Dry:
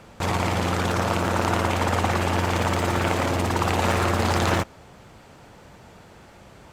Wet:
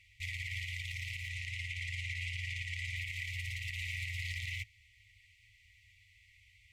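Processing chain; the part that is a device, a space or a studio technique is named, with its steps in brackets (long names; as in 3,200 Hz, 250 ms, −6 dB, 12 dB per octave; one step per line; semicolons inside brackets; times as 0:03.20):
0:01.29–0:02.97: low-pass filter 10,000 Hz 12 dB per octave
brick-wall band-stop 110–1,900 Hz
DJ mixer with the lows and highs turned down (three-way crossover with the lows and the highs turned down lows −15 dB, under 220 Hz, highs −16 dB, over 2,400 Hz; brickwall limiter −29 dBFS, peak gain reduction 10 dB)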